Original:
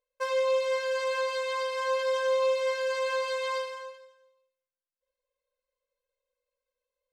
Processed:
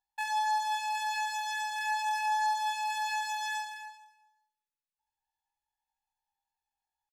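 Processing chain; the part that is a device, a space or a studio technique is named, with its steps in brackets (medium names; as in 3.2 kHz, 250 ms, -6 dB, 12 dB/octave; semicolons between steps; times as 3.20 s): chipmunk voice (pitch shift +8.5 st); trim -3.5 dB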